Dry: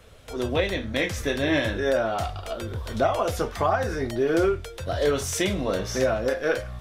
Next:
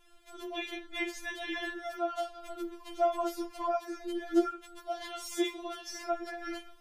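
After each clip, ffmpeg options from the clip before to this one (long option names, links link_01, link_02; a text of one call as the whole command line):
ffmpeg -i in.wav -af "afftfilt=real='re*4*eq(mod(b,16),0)':imag='im*4*eq(mod(b,16),0)':win_size=2048:overlap=0.75,volume=-7.5dB" out.wav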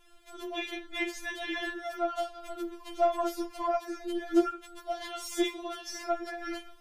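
ffmpeg -i in.wav -af "aeval=exprs='0.188*(cos(1*acos(clip(val(0)/0.188,-1,1)))-cos(1*PI/2))+0.00422*(cos(8*acos(clip(val(0)/0.188,-1,1)))-cos(8*PI/2))':channel_layout=same,volume=2dB" out.wav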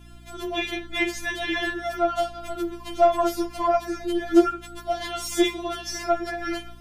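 ffmpeg -i in.wav -af "aeval=exprs='val(0)+0.002*(sin(2*PI*60*n/s)+sin(2*PI*2*60*n/s)/2+sin(2*PI*3*60*n/s)/3+sin(2*PI*4*60*n/s)/4+sin(2*PI*5*60*n/s)/5)':channel_layout=same,volume=8dB" out.wav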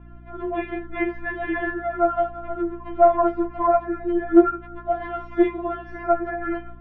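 ffmpeg -i in.wav -af "lowpass=frequency=1700:width=0.5412,lowpass=frequency=1700:width=1.3066,volume=3dB" out.wav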